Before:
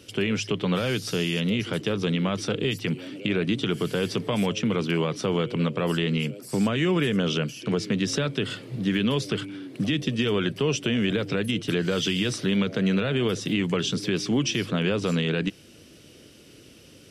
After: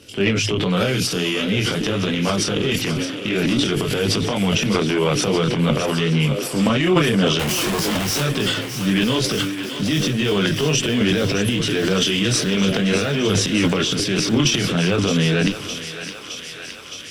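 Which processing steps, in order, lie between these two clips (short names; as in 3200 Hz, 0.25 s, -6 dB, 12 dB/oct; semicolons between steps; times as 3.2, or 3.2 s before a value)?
7.39–8.21 infinite clipping; added harmonics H 4 -25 dB, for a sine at -11 dBFS; chorus voices 2, 0.49 Hz, delay 23 ms, depth 4 ms; transient shaper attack -2 dB, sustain +11 dB; thinning echo 0.615 s, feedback 79%, high-pass 550 Hz, level -10 dB; gain +7.5 dB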